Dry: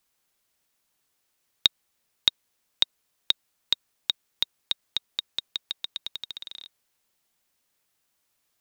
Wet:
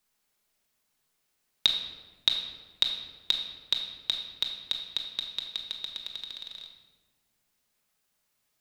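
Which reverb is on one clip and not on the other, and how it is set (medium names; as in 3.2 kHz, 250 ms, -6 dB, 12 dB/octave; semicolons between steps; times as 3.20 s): simulated room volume 860 m³, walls mixed, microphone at 1.4 m; trim -3.5 dB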